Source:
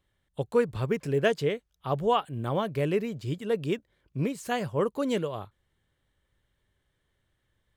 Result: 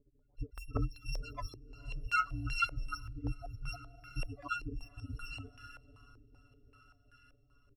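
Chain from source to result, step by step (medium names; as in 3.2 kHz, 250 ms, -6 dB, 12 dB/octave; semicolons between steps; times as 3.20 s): bit-reversed sample order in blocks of 256 samples; comb 7 ms, depth 60%; loudest bins only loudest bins 64; echo that smears into a reverb 543 ms, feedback 60%, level -15.5 dB; step-sequenced low-pass 5.2 Hz 370–1600 Hz; trim +7.5 dB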